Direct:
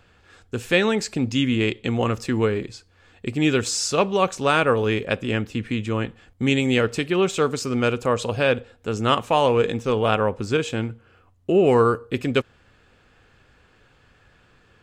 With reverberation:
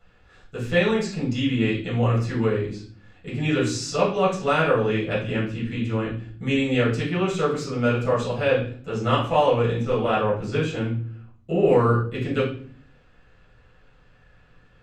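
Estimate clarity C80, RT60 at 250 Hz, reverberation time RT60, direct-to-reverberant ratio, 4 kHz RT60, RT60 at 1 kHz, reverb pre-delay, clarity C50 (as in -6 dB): 11.0 dB, 0.85 s, 0.50 s, -9.0 dB, 0.40 s, 0.40 s, 6 ms, 6.0 dB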